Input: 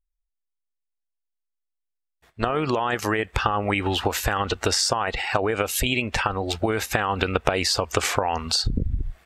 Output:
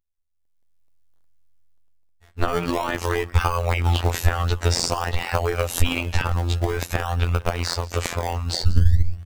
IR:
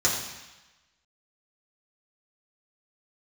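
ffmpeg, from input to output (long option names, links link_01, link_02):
-filter_complex "[0:a]asplit=4[link_01][link_02][link_03][link_04];[link_02]adelay=176,afreqshift=38,volume=-21dB[link_05];[link_03]adelay=352,afreqshift=76,volume=-29.2dB[link_06];[link_04]adelay=528,afreqshift=114,volume=-37.4dB[link_07];[link_01][link_05][link_06][link_07]amix=inputs=4:normalize=0,asubboost=boost=6.5:cutoff=89,afftfilt=real='hypot(re,im)*cos(PI*b)':imag='0':win_size=2048:overlap=0.75,asplit=2[link_08][link_09];[link_09]acrusher=samples=23:mix=1:aa=0.000001:lfo=1:lforange=23:lforate=0.5,volume=-6dB[link_10];[link_08][link_10]amix=inputs=2:normalize=0,dynaudnorm=framelen=170:gausssize=7:maxgain=15dB,volume=-1dB"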